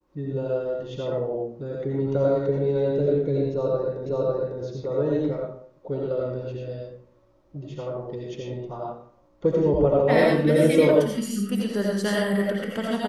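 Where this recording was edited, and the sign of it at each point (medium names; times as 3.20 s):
4.06 s: repeat of the last 0.55 s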